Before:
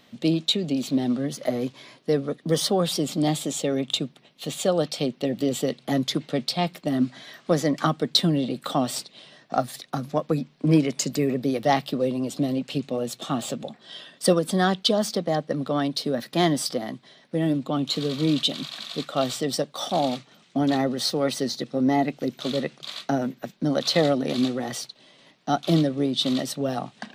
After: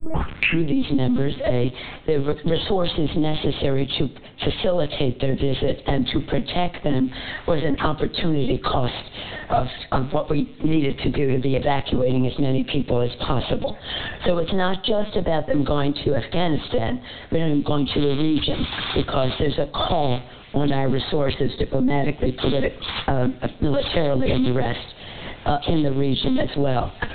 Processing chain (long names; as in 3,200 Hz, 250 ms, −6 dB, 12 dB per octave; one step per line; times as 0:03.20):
turntable start at the beginning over 0.70 s
in parallel at +0.5 dB: compressor whose output falls as the input rises −26 dBFS, ratio −0.5
on the sum: pitch vibrato 5.3 Hz 32 cents
linear-prediction vocoder at 8 kHz pitch kept
dense smooth reverb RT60 0.56 s, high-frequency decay 0.8×, DRR 15 dB
multiband upward and downward compressor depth 70%